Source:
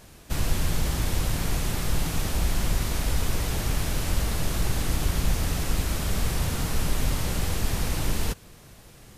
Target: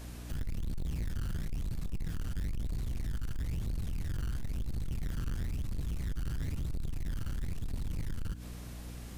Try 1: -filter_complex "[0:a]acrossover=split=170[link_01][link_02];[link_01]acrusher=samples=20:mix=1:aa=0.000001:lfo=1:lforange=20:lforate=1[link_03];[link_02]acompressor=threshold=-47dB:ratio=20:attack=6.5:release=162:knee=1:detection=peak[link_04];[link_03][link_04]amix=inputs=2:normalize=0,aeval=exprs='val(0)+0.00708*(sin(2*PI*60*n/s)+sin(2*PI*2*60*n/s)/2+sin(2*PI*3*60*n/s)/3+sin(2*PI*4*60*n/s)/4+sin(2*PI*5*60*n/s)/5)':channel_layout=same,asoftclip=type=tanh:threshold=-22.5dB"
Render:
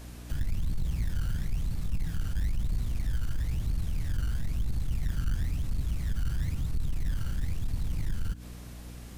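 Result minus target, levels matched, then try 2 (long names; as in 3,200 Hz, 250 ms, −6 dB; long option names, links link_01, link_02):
soft clipping: distortion −6 dB
-filter_complex "[0:a]acrossover=split=170[link_01][link_02];[link_01]acrusher=samples=20:mix=1:aa=0.000001:lfo=1:lforange=20:lforate=1[link_03];[link_02]acompressor=threshold=-47dB:ratio=20:attack=6.5:release=162:knee=1:detection=peak[link_04];[link_03][link_04]amix=inputs=2:normalize=0,aeval=exprs='val(0)+0.00708*(sin(2*PI*60*n/s)+sin(2*PI*2*60*n/s)/2+sin(2*PI*3*60*n/s)/3+sin(2*PI*4*60*n/s)/4+sin(2*PI*5*60*n/s)/5)':channel_layout=same,asoftclip=type=tanh:threshold=-31dB"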